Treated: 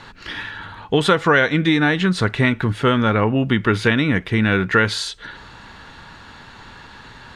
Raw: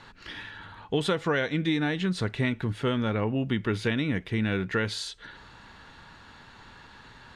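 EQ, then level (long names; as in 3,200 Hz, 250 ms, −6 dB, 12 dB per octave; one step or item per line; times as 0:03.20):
dynamic equaliser 1,300 Hz, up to +6 dB, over −45 dBFS, Q 1.2
+9.0 dB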